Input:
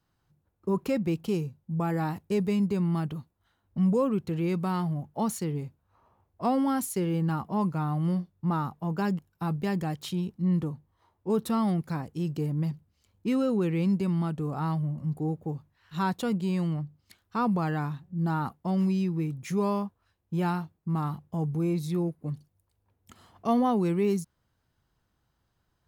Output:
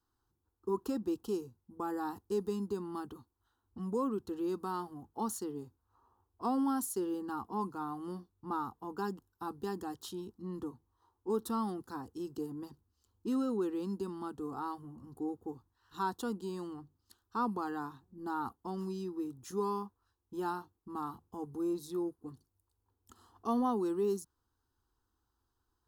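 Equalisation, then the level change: static phaser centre 600 Hz, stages 6; -3.5 dB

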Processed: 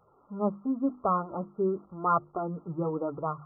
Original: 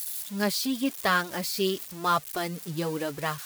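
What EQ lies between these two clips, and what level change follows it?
brick-wall FIR low-pass 1.4 kHz; hum notches 50/100/150/200/250/300/350 Hz; 0.0 dB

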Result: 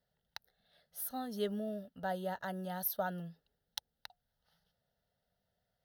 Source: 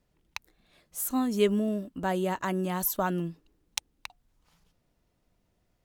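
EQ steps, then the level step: dynamic bell 2.4 kHz, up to -7 dB, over -52 dBFS, Q 1.7; high-pass 170 Hz 6 dB/octave; static phaser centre 1.6 kHz, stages 8; -4.0 dB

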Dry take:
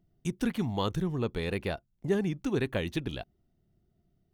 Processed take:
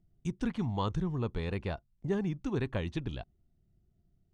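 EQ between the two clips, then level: dynamic bell 1 kHz, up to +7 dB, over -50 dBFS, Q 1.7; low-pass 8 kHz 24 dB/octave; bass shelf 160 Hz +11.5 dB; -7.0 dB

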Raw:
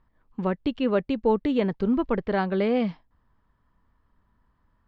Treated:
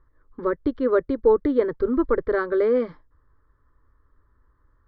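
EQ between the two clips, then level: distance through air 260 m; static phaser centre 730 Hz, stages 6; band-stop 960 Hz, Q 9.9; +7.0 dB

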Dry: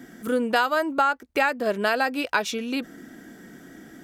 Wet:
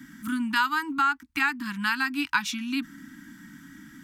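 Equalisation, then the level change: Chebyshev band-stop 300–900 Hz, order 4; peaking EQ 710 Hz -9 dB 0.25 oct; 0.0 dB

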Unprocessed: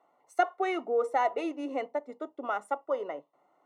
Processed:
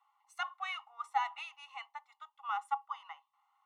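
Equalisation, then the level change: rippled Chebyshev high-pass 790 Hz, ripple 9 dB; +2.5 dB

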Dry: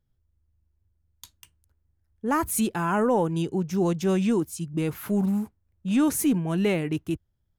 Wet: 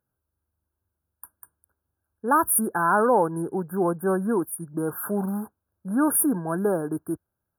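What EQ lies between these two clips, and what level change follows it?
high-pass 750 Hz 6 dB/octave; brick-wall FIR band-stop 1.7–9 kHz; +8.0 dB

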